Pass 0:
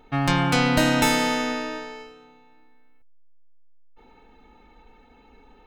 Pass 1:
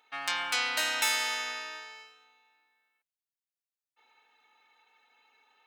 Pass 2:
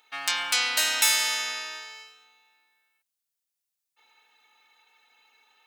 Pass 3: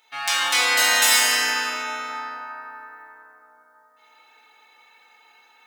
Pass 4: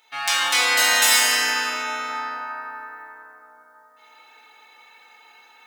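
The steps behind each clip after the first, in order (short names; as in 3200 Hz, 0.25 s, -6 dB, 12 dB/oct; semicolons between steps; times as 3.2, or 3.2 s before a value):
Bessel high-pass 1700 Hz, order 2; gain -2.5 dB
high shelf 3200 Hz +11 dB
plate-style reverb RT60 4.5 s, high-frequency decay 0.25×, DRR -9 dB
vocal rider within 4 dB 2 s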